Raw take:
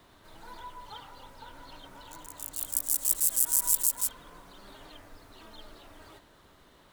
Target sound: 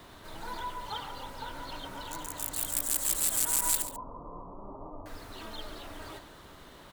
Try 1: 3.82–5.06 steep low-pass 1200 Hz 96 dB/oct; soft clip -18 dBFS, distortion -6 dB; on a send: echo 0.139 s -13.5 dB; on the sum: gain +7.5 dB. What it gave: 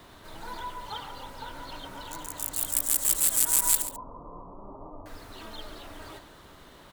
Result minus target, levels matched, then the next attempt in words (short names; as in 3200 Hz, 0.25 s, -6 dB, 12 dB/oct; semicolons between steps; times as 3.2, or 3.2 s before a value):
soft clip: distortion -5 dB
3.82–5.06 steep low-pass 1200 Hz 96 dB/oct; soft clip -27 dBFS, distortion -1 dB; on a send: echo 0.139 s -13.5 dB; on the sum: gain +7.5 dB